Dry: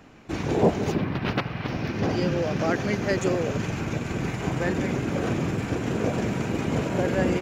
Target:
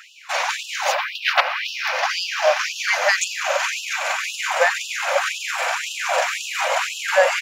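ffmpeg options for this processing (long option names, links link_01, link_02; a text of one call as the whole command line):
ffmpeg -i in.wav -filter_complex "[0:a]asplit=2[link_01][link_02];[link_02]alimiter=limit=-18.5dB:level=0:latency=1:release=22,volume=1.5dB[link_03];[link_01][link_03]amix=inputs=2:normalize=0,afftfilt=real='re*gte(b*sr/1024,480*pow(2600/480,0.5+0.5*sin(2*PI*1.9*pts/sr)))':imag='im*gte(b*sr/1024,480*pow(2600/480,0.5+0.5*sin(2*PI*1.9*pts/sr)))':win_size=1024:overlap=0.75,volume=8.5dB" out.wav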